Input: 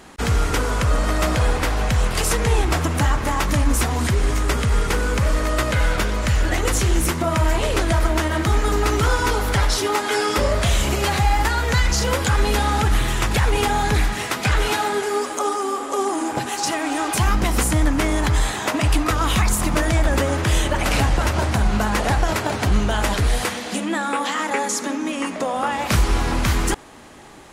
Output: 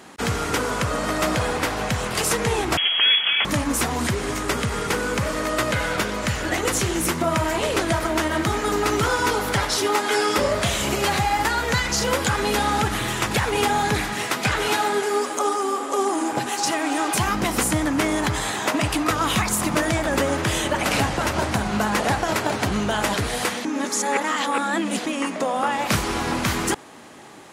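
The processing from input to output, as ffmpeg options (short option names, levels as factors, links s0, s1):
-filter_complex "[0:a]asettb=1/sr,asplit=3[s0][s1][s2];[s0]atrim=end=2.774[s3];[s1]atrim=start=2.77:end=3.45,asetpts=PTS-STARTPTS,afade=t=in:d=0.004:c=qsin,afade=t=out:st=0.676:d=0.004:c=qsin,lowpass=f=2900:t=q:w=0.5098,lowpass=f=2900:t=q:w=0.6013,lowpass=f=2900:t=q:w=0.9,lowpass=f=2900:t=q:w=2.563,afreqshift=-3400[s4];[s2]atrim=start=3.446[s5];[s3][s4]acrossfade=d=0.004:c1=hsin:c2=qsin[s6];[s6][s5]acrossfade=d=0.004:c1=qsin:c2=hsin,asplit=3[s7][s8][s9];[s7]atrim=end=23.652[s10];[s8]atrim=start=23.648:end=25.062,asetpts=PTS-STARTPTS,areverse[s11];[s9]atrim=start=25.058[s12];[s10][s11]acrossfade=d=0.004:c1=hsin:c2=hsin[s13];[s13][s12]acrossfade=d=0.004:c1=hsin:c2=hsin,highpass=130"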